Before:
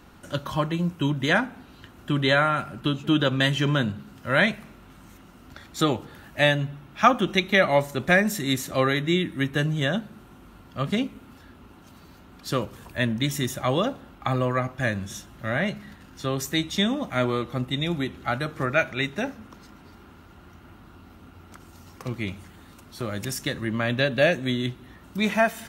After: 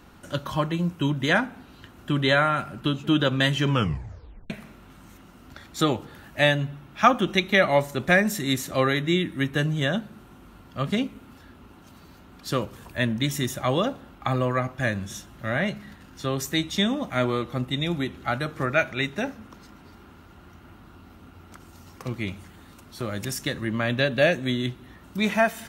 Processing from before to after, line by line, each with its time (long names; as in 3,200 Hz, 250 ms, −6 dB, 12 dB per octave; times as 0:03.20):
0:03.68: tape stop 0.82 s